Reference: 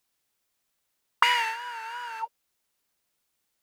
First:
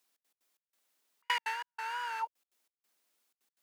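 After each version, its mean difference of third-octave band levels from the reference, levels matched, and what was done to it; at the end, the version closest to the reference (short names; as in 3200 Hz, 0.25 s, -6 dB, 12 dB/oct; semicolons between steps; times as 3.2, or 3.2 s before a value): 8.0 dB: step gate "xx.x.xx..xxxx" 185 bpm -60 dB; compressor 2:1, threshold -33 dBFS, peak gain reduction 7 dB; HPF 220 Hz 24 dB/oct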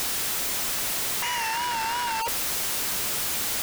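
14.5 dB: infinite clipping; gain +6 dB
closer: first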